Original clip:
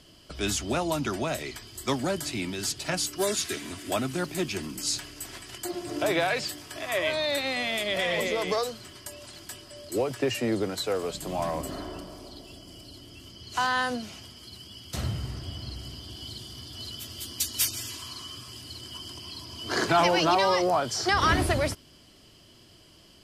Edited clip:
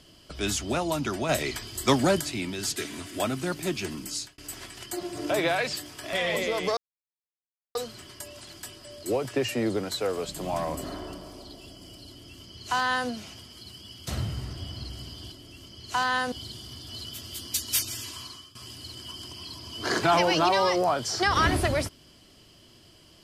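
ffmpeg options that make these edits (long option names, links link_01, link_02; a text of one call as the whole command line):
ffmpeg -i in.wav -filter_complex "[0:a]asplit=10[link_01][link_02][link_03][link_04][link_05][link_06][link_07][link_08][link_09][link_10];[link_01]atrim=end=1.292[link_11];[link_02]atrim=start=1.288:end=2.212,asetpts=PTS-STARTPTS,volume=6dB[link_12];[link_03]atrim=start=2.208:end=2.762[link_13];[link_04]atrim=start=3.478:end=5.1,asetpts=PTS-STARTPTS,afade=type=out:start_time=1.272:duration=0.35[link_14];[link_05]atrim=start=5.1:end=6.852,asetpts=PTS-STARTPTS,afade=type=in:duration=0.004:curve=hsin[link_15];[link_06]atrim=start=7.968:end=8.61,asetpts=PTS-STARTPTS,afade=type=out:start_time=0.638:duration=0.004:curve=hsin,apad=pad_dur=0.98[link_16];[link_07]atrim=start=8.61:end=16.182,asetpts=PTS-STARTPTS,afade=type=in:duration=0.004:curve=hsin[link_17];[link_08]atrim=start=12.948:end=13.952[link_18];[link_09]atrim=start=16.178:end=18.41,asetpts=PTS-STARTPTS,afade=type=out:start_time=1.892:duration=0.34:silence=0.125893[link_19];[link_10]atrim=start=18.41,asetpts=PTS-STARTPTS,afade=type=in:duration=0.004:curve=hsin:silence=0.125893[link_20];[link_11][link_12]acrossfade=duration=0.004:curve1=hsin:curve2=hsin[link_21];[link_21][link_13]acrossfade=duration=0.004:curve1=hsin:curve2=hsin[link_22];[link_14][link_15]concat=n=2:v=0:a=1[link_23];[link_22][link_23]acrossfade=duration=0.004:curve1=hsin:curve2=hsin[link_24];[link_16][link_17]concat=n=2:v=0:a=1[link_25];[link_24][link_25]acrossfade=duration=0.004:curve1=hsin:curve2=hsin[link_26];[link_26][link_18]acrossfade=duration=0.004:curve1=hsin:curve2=hsin[link_27];[link_19][link_20]concat=n=2:v=0:a=1[link_28];[link_27][link_28]acrossfade=duration=0.004:curve1=hsin:curve2=hsin" out.wav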